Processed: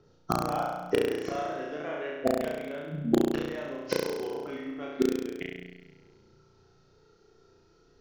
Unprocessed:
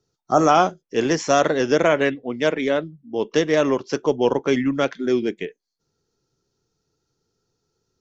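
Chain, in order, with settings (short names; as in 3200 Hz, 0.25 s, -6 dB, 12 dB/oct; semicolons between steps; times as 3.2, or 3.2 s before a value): LPF 3200 Hz 12 dB/oct; notches 60/120/180/240/300 Hz; flipped gate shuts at -19 dBFS, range -30 dB; in parallel at -6 dB: wrapped overs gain 20 dB; on the sum: phaser 0.33 Hz, delay 3.3 ms, feedback 38%; on a send: flutter echo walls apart 5.8 m, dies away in 1.2 s; on the sum: gain +5 dB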